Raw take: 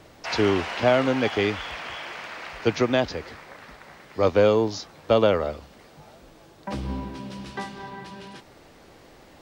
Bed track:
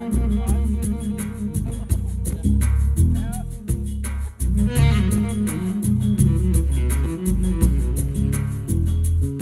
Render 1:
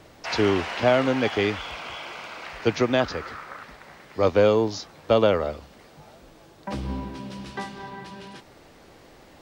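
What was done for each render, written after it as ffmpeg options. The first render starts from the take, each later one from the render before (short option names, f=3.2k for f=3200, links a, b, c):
-filter_complex "[0:a]asettb=1/sr,asplit=3[a][b][c];[a]atrim=end=1.584[d];[b]atrim=start=1.58:end=2.45,asetpts=PTS-STARTPTS,afade=t=in:d=0.004:c=qsin,afade=t=out:st=0.866:d=0.004:c=qsin,bandreject=f=1.8k:w=5.1[e];[c]atrim=start=2.446[f];[d][e]acrossfade=d=0.004:c1=hsin:c2=qsin[g];[g][f]acrossfade=d=0.004:c1=qsin:c2=hsin,asettb=1/sr,asplit=3[h][i][j];[h]atrim=end=3.004[k];[i]atrim=start=3:end=3.63,asetpts=PTS-STARTPTS,afade=t=in:d=0.004:c=qsin,afade=t=out:st=0.626:d=0.004:c=qsin,equalizer=f=1.3k:t=o:w=0.53:g=12.5[l];[j]atrim=start=3.626[m];[k][l]acrossfade=d=0.004:c1=hsin:c2=qsin[n];[n][m]acrossfade=d=0.004:c1=qsin:c2=hsin"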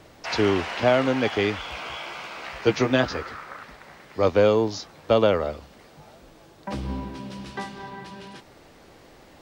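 -filter_complex "[0:a]asettb=1/sr,asplit=3[a][b][c];[a]atrim=end=1.704[d];[b]atrim=start=1.7:end=3.23,asetpts=PTS-STARTPTS,afade=t=in:d=0.004:c=qsin,afade=t=out:st=1.526:d=0.004:c=qsin,asplit=2[e][f];[f]adelay=15,volume=-4dB[g];[e][g]amix=inputs=2:normalize=0,atrim=end_sample=67473[h];[c]atrim=start=3.226[i];[d][h]acrossfade=d=0.004:c1=hsin:c2=qsin[j];[j][i]acrossfade=d=0.004:c1=qsin:c2=hsin"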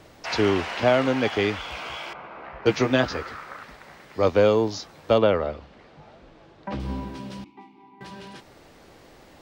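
-filter_complex "[0:a]asettb=1/sr,asplit=3[a][b][c];[a]atrim=end=2.134[d];[b]atrim=start=2.13:end=2.66,asetpts=PTS-STARTPTS,afade=t=in:d=0.004:c=qsin,afade=t=out:st=0.526:d=0.004:c=qsin,lowpass=1.3k[e];[c]atrim=start=2.656[f];[d][e]acrossfade=d=0.004:c1=hsin:c2=qsin[g];[g][f]acrossfade=d=0.004:c1=qsin:c2=hsin,asettb=1/sr,asplit=3[h][i][j];[h]atrim=end=5.184[k];[i]atrim=start=5.18:end=6.8,asetpts=PTS-STARTPTS,afade=t=in:d=0.004:c=qsin,afade=t=out:st=1.616:d=0.004:c=qsin,lowpass=3.6k[l];[j]atrim=start=6.796[m];[k][l]acrossfade=d=0.004:c1=hsin:c2=qsin[n];[n][m]acrossfade=d=0.004:c1=qsin:c2=hsin,asettb=1/sr,asplit=3[o][p][q];[o]atrim=end=7.444[r];[p]atrim=start=7.44:end=8.01,asetpts=PTS-STARTPTS,afade=t=in:d=0.004:c=qsin,afade=t=out:st=0.566:d=0.004:c=qsin,asplit=3[s][t][u];[s]bandpass=f=300:t=q:w=8,volume=0dB[v];[t]bandpass=f=870:t=q:w=8,volume=-6dB[w];[u]bandpass=f=2.24k:t=q:w=8,volume=-9dB[x];[v][w][x]amix=inputs=3:normalize=0[y];[q]atrim=start=8.006[z];[r][y]acrossfade=d=0.004:c1=hsin:c2=qsin[aa];[aa][z]acrossfade=d=0.004:c1=qsin:c2=hsin"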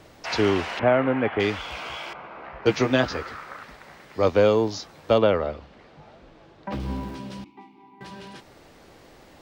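-filter_complex "[0:a]asettb=1/sr,asplit=3[a][b][c];[a]atrim=end=0.794[d];[b]atrim=start=0.79:end=1.4,asetpts=PTS-STARTPTS,afade=t=in:d=0.004:c=qsin,afade=t=out:st=0.606:d=0.004:c=qsin,lowpass=f=2.3k:w=0.5412,lowpass=f=2.3k:w=1.3066[e];[c]atrim=start=1.396[f];[d][e]acrossfade=d=0.004:c1=hsin:c2=qsin[g];[g][f]acrossfade=d=0.004:c1=qsin:c2=hsin,asettb=1/sr,asplit=3[h][i][j];[h]atrim=end=6.724[k];[i]atrim=start=6.72:end=7.15,asetpts=PTS-STARTPTS,afade=t=in:d=0.004:c=qsin,afade=t=out:st=0.426:d=0.004:c=qsin,aeval=exprs='val(0)+0.5*0.00531*sgn(val(0))':c=same[l];[j]atrim=start=7.146[m];[k][l]acrossfade=d=0.004:c1=hsin:c2=qsin[n];[n][m]acrossfade=d=0.004:c1=qsin:c2=hsin"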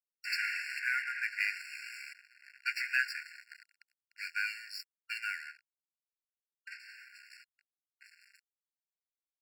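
-af "aeval=exprs='sgn(val(0))*max(abs(val(0))-0.015,0)':c=same,afftfilt=real='re*eq(mod(floor(b*sr/1024/1400),2),1)':imag='im*eq(mod(floor(b*sr/1024/1400),2),1)':win_size=1024:overlap=0.75"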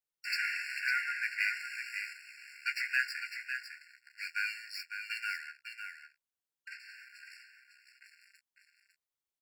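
-filter_complex "[0:a]asplit=2[a][b];[b]adelay=14,volume=-11dB[c];[a][c]amix=inputs=2:normalize=0,aecho=1:1:553:0.422"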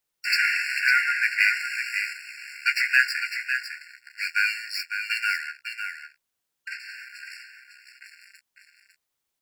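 -af "volume=11.5dB"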